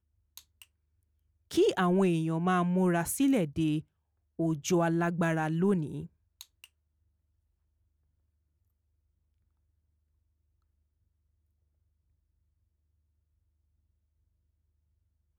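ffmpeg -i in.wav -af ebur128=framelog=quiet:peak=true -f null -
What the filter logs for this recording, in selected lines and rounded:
Integrated loudness:
  I:         -28.6 LUFS
  Threshold: -40.0 LUFS
Loudness range:
  LRA:         7.3 LU
  Threshold: -51.0 LUFS
  LRA low:   -35.9 LUFS
  LRA high:  -28.7 LUFS
True peak:
  Peak:      -17.1 dBFS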